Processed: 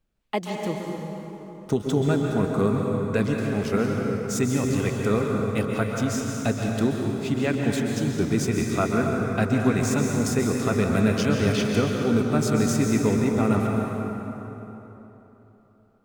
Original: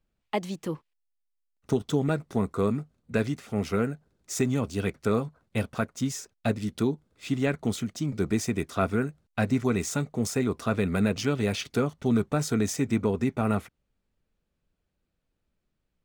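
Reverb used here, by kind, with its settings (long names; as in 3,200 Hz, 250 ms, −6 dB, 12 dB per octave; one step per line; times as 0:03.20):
dense smooth reverb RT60 3.6 s, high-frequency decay 0.6×, pre-delay 115 ms, DRR 0 dB
level +1.5 dB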